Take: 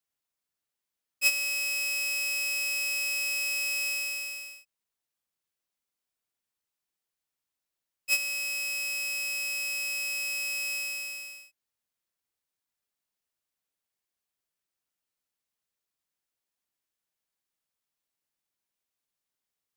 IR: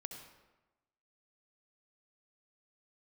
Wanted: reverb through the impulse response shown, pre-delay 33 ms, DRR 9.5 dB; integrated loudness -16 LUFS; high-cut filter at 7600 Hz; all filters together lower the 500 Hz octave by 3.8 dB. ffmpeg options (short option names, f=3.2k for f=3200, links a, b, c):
-filter_complex "[0:a]lowpass=7.6k,equalizer=f=500:t=o:g=-4.5,asplit=2[a][b];[1:a]atrim=start_sample=2205,adelay=33[c];[b][c]afir=irnorm=-1:irlink=0,volume=-6.5dB[d];[a][d]amix=inputs=2:normalize=0,volume=13.5dB"